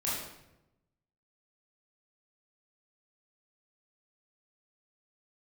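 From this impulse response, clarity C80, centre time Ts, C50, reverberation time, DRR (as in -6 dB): 4.0 dB, 67 ms, 0.0 dB, 0.90 s, -8.0 dB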